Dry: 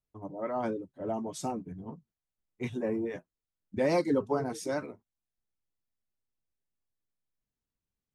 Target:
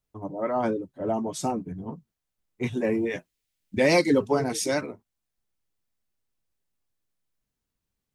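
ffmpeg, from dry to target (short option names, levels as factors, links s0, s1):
-filter_complex "[0:a]asettb=1/sr,asplit=3[s0][s1][s2];[s0]atrim=end=2.774[s3];[s1]atrim=start=2.77:end=4.81,asetpts=PTS-STARTPTS,afade=t=in:d=0.004:c=qsin,afade=t=out:st=2.036:d=0.004:c=qsin,highshelf=f=1700:t=q:w=1.5:g=6.5[s4];[s2]atrim=start=4.806[s5];[s3][s4]acrossfade=d=0.004:c1=hsin:c2=qsin[s6];[s6][s5]acrossfade=d=0.004:c1=qsin:c2=hsin,volume=2.11"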